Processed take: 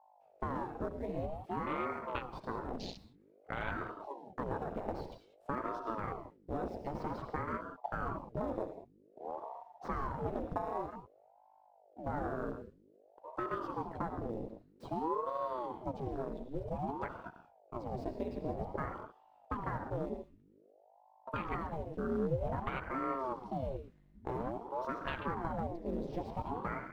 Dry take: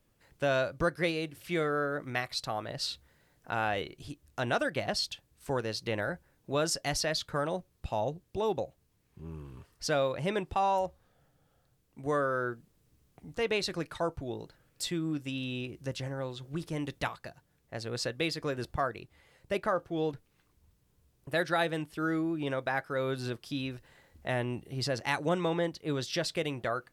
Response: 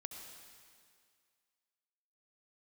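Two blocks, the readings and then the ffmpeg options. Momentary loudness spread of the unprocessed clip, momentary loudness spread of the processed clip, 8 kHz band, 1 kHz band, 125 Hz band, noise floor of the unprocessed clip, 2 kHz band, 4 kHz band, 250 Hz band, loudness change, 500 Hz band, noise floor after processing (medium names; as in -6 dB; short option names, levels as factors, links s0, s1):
12 LU, 10 LU, under -25 dB, -3.0 dB, -5.5 dB, -71 dBFS, -11.5 dB, -20.5 dB, -5.0 dB, -7.0 dB, -7.0 dB, -65 dBFS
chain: -filter_complex "[0:a]acrossover=split=710|5300[s0][s1][s2];[s2]aeval=exprs='(mod(70.8*val(0)+1,2)-1)/70.8':c=same[s3];[s0][s1][s3]amix=inputs=3:normalize=0,bandreject=f=50:t=h:w=6,bandreject=f=100:t=h:w=6,bandreject=f=150:t=h:w=6,bandreject=f=200:t=h:w=6,bandreject=f=250:t=h:w=6,bandreject=f=300:t=h:w=6,bandreject=f=350:t=h:w=6,bandreject=f=400:t=h:w=6,bandreject=f=450:t=h:w=6,asplit=2[s4][s5];[s5]acrusher=samples=29:mix=1:aa=0.000001,volume=0.631[s6];[s4][s6]amix=inputs=2:normalize=0,acompressor=threshold=0.0355:ratio=16,acrusher=bits=3:mode=log:mix=0:aa=0.000001[s7];[1:a]atrim=start_sample=2205,afade=t=out:st=0.26:d=0.01,atrim=end_sample=11907[s8];[s7][s8]afir=irnorm=-1:irlink=0,afwtdn=0.01,aeval=exprs='val(0)+0.000562*(sin(2*PI*50*n/s)+sin(2*PI*2*50*n/s)/2+sin(2*PI*3*50*n/s)/3+sin(2*PI*4*50*n/s)/4+sin(2*PI*5*50*n/s)/5)':c=same,highshelf=f=4200:g=-12,aeval=exprs='val(0)*sin(2*PI*460*n/s+460*0.8/0.52*sin(2*PI*0.52*n/s))':c=same,volume=1.58"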